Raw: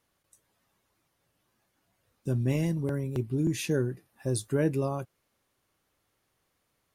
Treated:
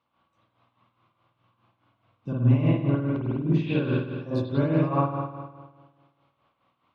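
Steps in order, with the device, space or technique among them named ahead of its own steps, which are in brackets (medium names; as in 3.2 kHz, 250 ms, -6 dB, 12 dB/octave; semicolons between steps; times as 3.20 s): combo amplifier with spring reverb and tremolo (spring tank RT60 1.5 s, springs 50 ms, chirp 50 ms, DRR -9.5 dB; tremolo 4.8 Hz, depth 64%; cabinet simulation 99–3900 Hz, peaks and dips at 410 Hz -10 dB, 1.1 kHz +9 dB, 1.8 kHz -10 dB); 2.39–3.84 s: treble shelf 5.3 kHz -11.5 dB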